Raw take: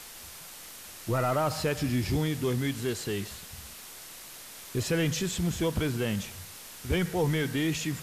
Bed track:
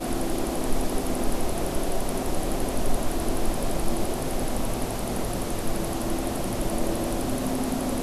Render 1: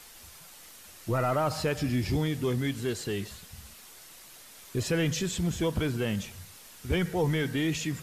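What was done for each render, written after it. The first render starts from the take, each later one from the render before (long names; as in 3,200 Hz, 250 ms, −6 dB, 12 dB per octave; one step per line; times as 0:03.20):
broadband denoise 6 dB, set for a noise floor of −46 dBFS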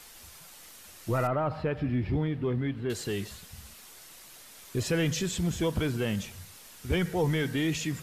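0:01.27–0:02.90: high-frequency loss of the air 470 metres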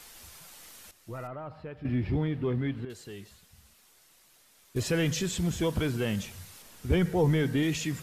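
0:00.91–0:01.85: clip gain −11.5 dB
0:02.85–0:04.76: clip gain −11 dB
0:06.62–0:07.63: tilt shelving filter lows +3.5 dB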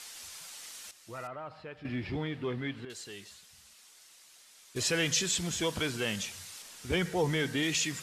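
low-pass filter 7,700 Hz 12 dB per octave
spectral tilt +3 dB per octave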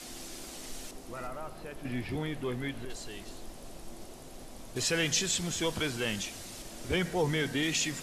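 mix in bed track −20.5 dB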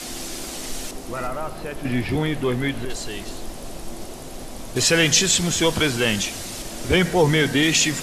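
level +12 dB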